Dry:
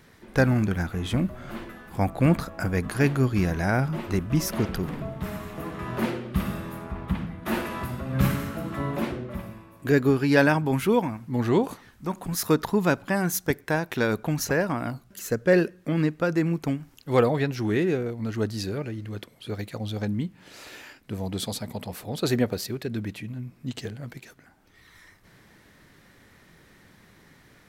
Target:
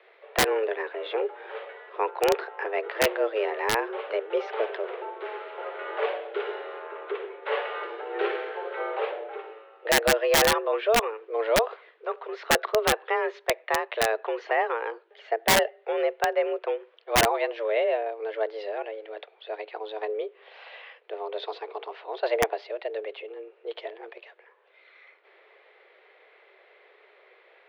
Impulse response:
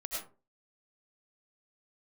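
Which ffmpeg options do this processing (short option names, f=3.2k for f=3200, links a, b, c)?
-af "highpass=f=190:t=q:w=0.5412,highpass=f=190:t=q:w=1.307,lowpass=f=3.3k:t=q:w=0.5176,lowpass=f=3.3k:t=q:w=0.7071,lowpass=f=3.3k:t=q:w=1.932,afreqshift=220,aeval=exprs='(mod(4.47*val(0)+1,2)-1)/4.47':c=same"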